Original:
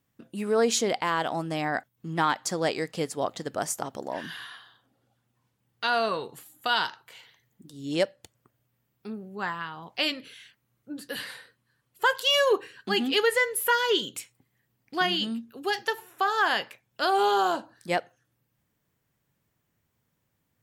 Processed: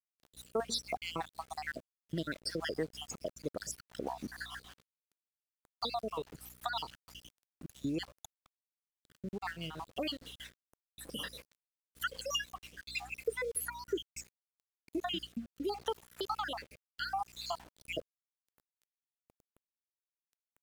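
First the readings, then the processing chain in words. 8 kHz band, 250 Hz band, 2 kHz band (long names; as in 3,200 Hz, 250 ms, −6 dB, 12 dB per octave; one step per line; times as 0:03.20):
−9.5 dB, −9.0 dB, −14.0 dB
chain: time-frequency cells dropped at random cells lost 72%
parametric band 1,900 Hz −4 dB 0.73 octaves
downward compressor 2.5 to 1, threshold −46 dBFS, peak gain reduction 16.5 dB
mains hum 60 Hz, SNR 16 dB
centre clipping without the shift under −57 dBFS
rotating-speaker cabinet horn 6.3 Hz, later 0.7 Hz, at 0:12.80
level +9 dB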